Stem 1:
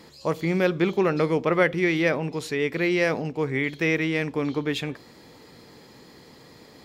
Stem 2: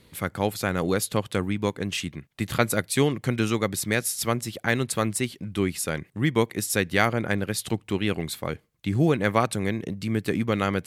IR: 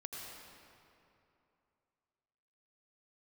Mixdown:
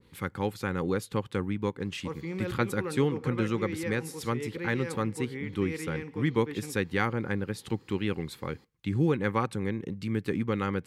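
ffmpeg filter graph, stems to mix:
-filter_complex "[0:a]adelay=1800,volume=0.251,asplit=2[s0][s1];[s1]volume=0.188[s2];[1:a]highshelf=f=5600:g=-9,volume=0.631,asplit=2[s3][s4];[s4]apad=whole_len=381299[s5];[s0][s5]sidechaincompress=threshold=0.0282:ratio=8:attack=32:release=105[s6];[2:a]atrim=start_sample=2205[s7];[s2][s7]afir=irnorm=-1:irlink=0[s8];[s6][s3][s8]amix=inputs=3:normalize=0,asuperstop=centerf=650:order=4:qfactor=3.3,adynamicequalizer=threshold=0.00562:dfrequency=1800:dqfactor=0.7:tfrequency=1800:tqfactor=0.7:attack=5:release=100:ratio=0.375:range=3:mode=cutabove:tftype=highshelf"

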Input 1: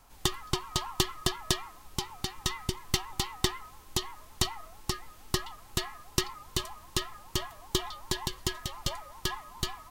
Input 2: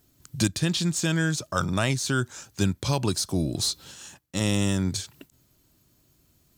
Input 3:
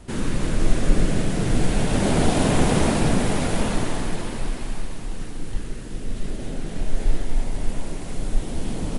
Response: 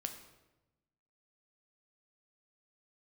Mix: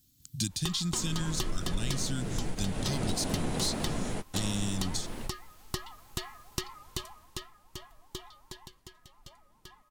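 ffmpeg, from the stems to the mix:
-filter_complex "[0:a]adelay=400,volume=0.668,afade=t=out:st=6.92:d=0.61:silence=0.354813,afade=t=out:st=8.37:d=0.47:silence=0.446684[s0];[1:a]firequalizer=gain_entry='entry(250,0);entry(430,-17);entry(3500,4)':delay=0.05:min_phase=1,volume=0.596,asplit=2[s1][s2];[2:a]adelay=850,volume=0.316[s3];[s2]apad=whole_len=433747[s4];[s3][s4]sidechaingate=range=0.0224:threshold=0.00178:ratio=16:detection=peak[s5];[s0][s1][s5]amix=inputs=3:normalize=0,acompressor=threshold=0.0316:ratio=2"

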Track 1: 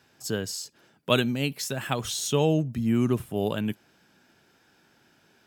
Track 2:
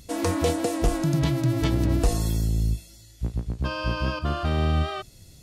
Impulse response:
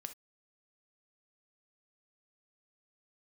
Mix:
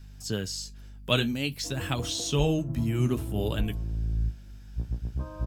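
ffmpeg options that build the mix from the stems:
-filter_complex "[0:a]highshelf=f=2400:g=11,aeval=exprs='val(0)+0.00447*(sin(2*PI*50*n/s)+sin(2*PI*2*50*n/s)/2+sin(2*PI*3*50*n/s)/3+sin(2*PI*4*50*n/s)/4+sin(2*PI*5*50*n/s)/5)':c=same,flanger=delay=6.7:depth=9.6:regen=-48:speed=0.55:shape=sinusoidal,volume=0.75,asplit=2[s0][s1];[1:a]lowpass=f=1200:w=0.5412,lowpass=f=1200:w=1.3066,adelay=1550,volume=0.178,asplit=2[s2][s3];[s3]volume=0.668[s4];[s1]apad=whole_len=307402[s5];[s2][s5]sidechaincompress=threshold=0.0158:ratio=8:attack=16:release=1080[s6];[2:a]atrim=start_sample=2205[s7];[s4][s7]afir=irnorm=-1:irlink=0[s8];[s0][s6][s8]amix=inputs=3:normalize=0,acrossover=split=6300[s9][s10];[s10]acompressor=threshold=0.00447:ratio=4:attack=1:release=60[s11];[s9][s11]amix=inputs=2:normalize=0,lowshelf=f=180:g=10.5"

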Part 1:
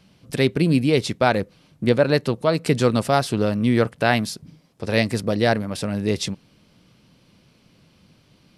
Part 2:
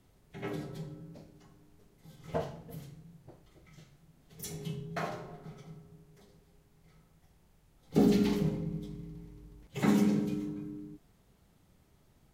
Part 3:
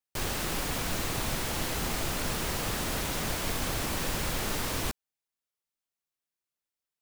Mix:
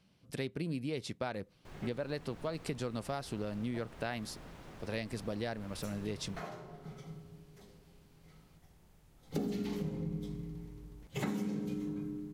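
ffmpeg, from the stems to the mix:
-filter_complex "[0:a]volume=0.211,asplit=2[s0][s1];[1:a]adelay=1400,volume=1.26[s2];[2:a]lowpass=f=1500:p=1,adelay=1500,volume=0.133[s3];[s1]apad=whole_len=605886[s4];[s2][s4]sidechaincompress=threshold=0.00447:ratio=3:attack=8.5:release=704[s5];[s0][s5][s3]amix=inputs=3:normalize=0,acompressor=threshold=0.0224:ratio=8"

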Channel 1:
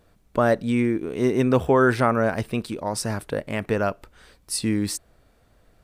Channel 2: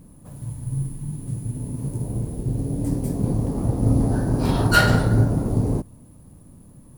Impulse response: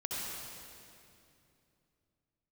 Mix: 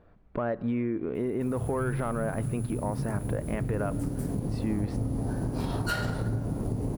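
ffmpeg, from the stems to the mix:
-filter_complex "[0:a]lowpass=1700,acontrast=42,alimiter=limit=0.224:level=0:latency=1:release=134,volume=0.562,asplit=2[s0][s1];[s1]volume=0.0668[s2];[1:a]acompressor=threshold=0.0562:ratio=3,aeval=exprs='sgn(val(0))*max(abs(val(0))-0.00299,0)':c=same,adelay=1150,volume=1.12[s3];[2:a]atrim=start_sample=2205[s4];[s2][s4]afir=irnorm=-1:irlink=0[s5];[s0][s3][s5]amix=inputs=3:normalize=0,acompressor=threshold=0.0355:ratio=2"

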